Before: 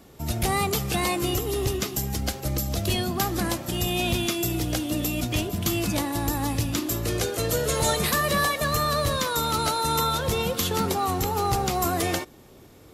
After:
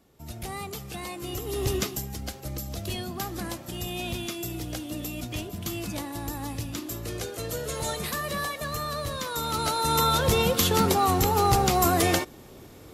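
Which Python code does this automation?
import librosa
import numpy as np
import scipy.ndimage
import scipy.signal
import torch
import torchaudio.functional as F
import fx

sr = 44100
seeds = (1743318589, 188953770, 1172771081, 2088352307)

y = fx.gain(x, sr, db=fx.line((1.17, -11.5), (1.78, 1.0), (2.08, -7.5), (9.13, -7.5), (10.2, 3.0)))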